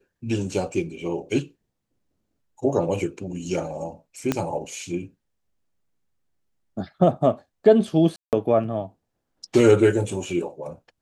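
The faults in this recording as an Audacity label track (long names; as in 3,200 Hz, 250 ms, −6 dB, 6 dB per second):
4.320000	4.320000	click −8 dBFS
8.160000	8.330000	drop-out 168 ms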